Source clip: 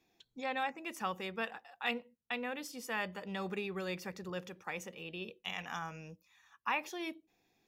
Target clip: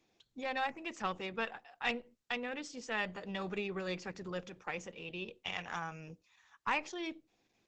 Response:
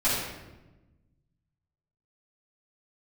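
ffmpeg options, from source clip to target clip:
-af "aeval=exprs='0.112*(cos(1*acos(clip(val(0)/0.112,-1,1)))-cos(1*PI/2))+0.00251*(cos(4*acos(clip(val(0)/0.112,-1,1)))-cos(4*PI/2))+0.0126*(cos(6*acos(clip(val(0)/0.112,-1,1)))-cos(6*PI/2))+0.00398*(cos(8*acos(clip(val(0)/0.112,-1,1)))-cos(8*PI/2))':c=same,aexciter=amount=4:drive=6:freq=11k,volume=1dB" -ar 48000 -c:a libopus -b:a 12k

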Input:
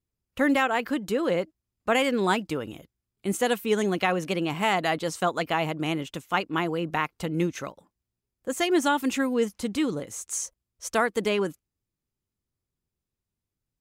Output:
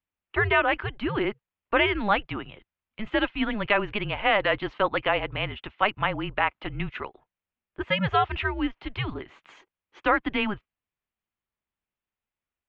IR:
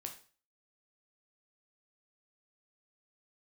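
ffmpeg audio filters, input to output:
-af "asetrate=48000,aresample=44100,equalizer=f=270:w=0.66:g=-12.5,highpass=f=170:t=q:w=0.5412,highpass=f=170:t=q:w=1.307,lowpass=f=3.3k:t=q:w=0.5176,lowpass=f=3.3k:t=q:w=0.7071,lowpass=f=3.3k:t=q:w=1.932,afreqshift=-210,volume=5dB"

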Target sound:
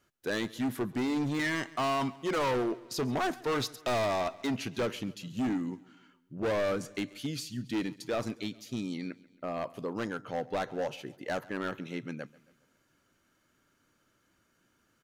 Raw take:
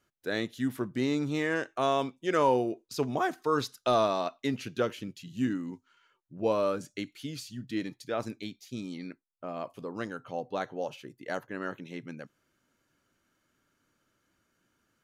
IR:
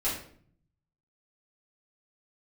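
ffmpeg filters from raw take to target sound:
-filter_complex "[0:a]asettb=1/sr,asplit=3[a][b][c];[a]atrim=end=1.394[d];[b]atrim=start=1.39:end=2.18,asetpts=PTS-STARTPTS,afade=t=in:d=0.004:c=qsin,afade=t=out:st=0.786:d=0.004:c=qsin,aecho=1:1:1:0.81,atrim=end_sample=34839[e];[c]atrim=start=2.176[f];[d][e]acrossfade=d=0.004:c1=hsin:c2=qsin[g];[g][f]acrossfade=d=0.004:c1=qsin:c2=hsin,volume=30dB,asoftclip=hard,volume=-30dB,asplit=2[h][i];[i]aecho=0:1:137|274|411|548:0.0841|0.0454|0.0245|0.0132[j];[h][j]amix=inputs=2:normalize=0,volume=3dB"

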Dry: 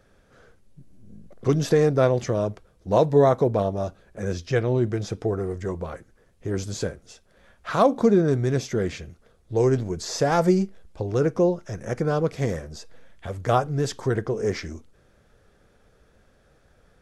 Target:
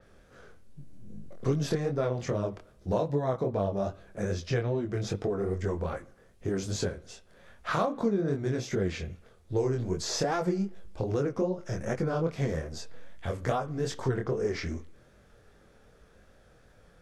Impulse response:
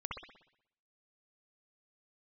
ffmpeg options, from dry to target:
-filter_complex "[0:a]acompressor=threshold=-26dB:ratio=6,flanger=delay=20:depth=5.6:speed=2.5,asplit=2[a][b];[1:a]atrim=start_sample=2205[c];[b][c]afir=irnorm=-1:irlink=0,volume=-19.5dB[d];[a][d]amix=inputs=2:normalize=0,adynamicequalizer=threshold=0.00158:dfrequency=5600:dqfactor=0.7:tfrequency=5600:tqfactor=0.7:attack=5:release=100:ratio=0.375:range=3.5:mode=cutabove:tftype=highshelf,volume=3dB"

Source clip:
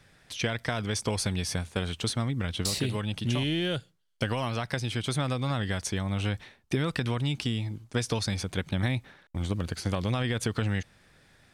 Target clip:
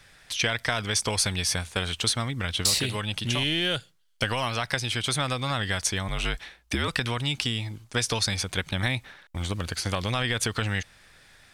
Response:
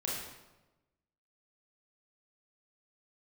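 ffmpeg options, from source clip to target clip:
-filter_complex "[0:a]equalizer=f=200:w=0.31:g=-10.5,asettb=1/sr,asplit=3[a][b][c];[a]atrim=end=6.084[d];[b]atrim=start=6.08:end=6.88,asetpts=PTS-STARTPTS,afade=t=in:d=0.004:c=qsin,afade=t=out:st=0.796:d=0.004:c=qsin,afreqshift=-58[e];[c]atrim=start=6.876[f];[d][e]acrossfade=d=0.004:c1=hsin:c2=qsin[g];[g][f]acrossfade=d=0.004:c1=qsin:c2=hsin,volume=8dB"

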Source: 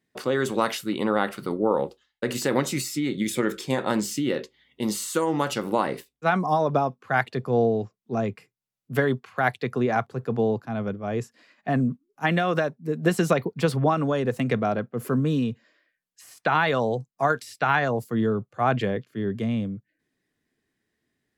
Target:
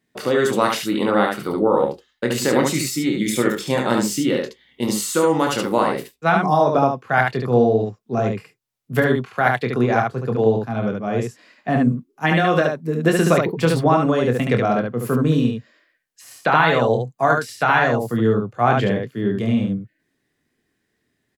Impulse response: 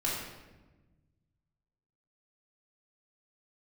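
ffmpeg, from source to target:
-filter_complex "[0:a]asettb=1/sr,asplit=3[a][b][c];[a]atrim=end=16.554[d];[b]atrim=start=16.55:end=17.25,asetpts=PTS-STARTPTS,afade=t=in:d=0.004:c=qsin,afade=t=out:st=0.696:d=0.004:c=qsin,bandreject=f=5.4k:w=5.6[e];[c]atrim=start=17.246[f];[d][e]acrossfade=d=0.004:c1=hsin:c2=qsin[g];[g][f]acrossfade=d=0.004:c1=qsin:c2=hsin,aecho=1:1:25|72:0.447|0.668,volume=4dB"

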